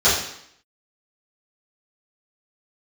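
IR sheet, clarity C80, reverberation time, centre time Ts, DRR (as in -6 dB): 6.5 dB, 0.70 s, 48 ms, -12.5 dB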